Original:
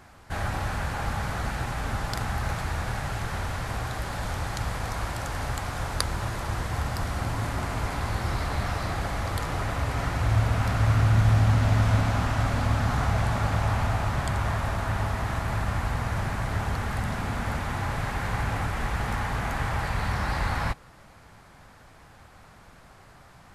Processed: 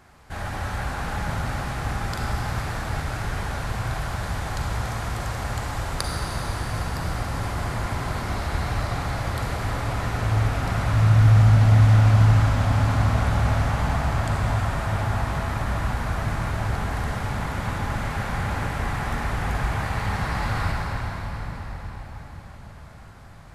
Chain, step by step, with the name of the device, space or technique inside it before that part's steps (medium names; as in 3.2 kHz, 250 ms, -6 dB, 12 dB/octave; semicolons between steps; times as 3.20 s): cathedral (reverberation RT60 5.7 s, pre-delay 36 ms, DRR -2 dB); trim -2.5 dB